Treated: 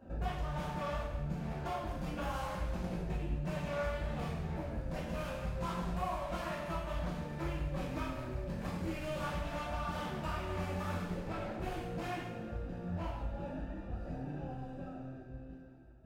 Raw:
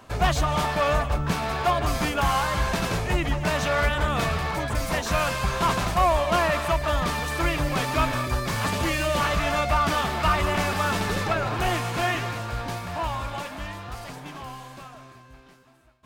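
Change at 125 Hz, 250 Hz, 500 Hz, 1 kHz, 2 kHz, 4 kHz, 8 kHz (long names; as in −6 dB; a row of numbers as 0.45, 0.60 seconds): −11.0, −9.5, −13.5, −16.5, −18.5, −20.0, −22.0 decibels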